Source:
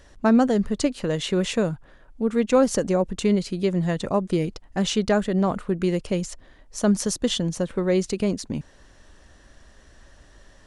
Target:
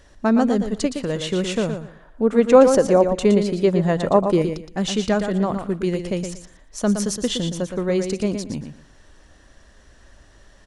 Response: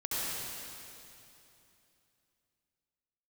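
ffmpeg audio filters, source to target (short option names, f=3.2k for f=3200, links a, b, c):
-filter_complex "[0:a]asettb=1/sr,asplit=3[a][b][c];[a]atrim=end=1.734[d];[b]atrim=start=1.73:end=4.42,asetpts=PTS-STARTPTS,afade=t=in:d=0.004:c=qsin,afade=t=out:st=2.686:d=0.004:c=qsin,equalizer=f=660:w=0.5:g=8[e];[c]atrim=start=4.416[f];[d][e]acrossfade=d=0.004:c1=hsin:c2=qsin[g];[g][f]acrossfade=d=0.004:c1=qsin:c2=hsin,aecho=1:1:117|234|351:0.422|0.0886|0.0186"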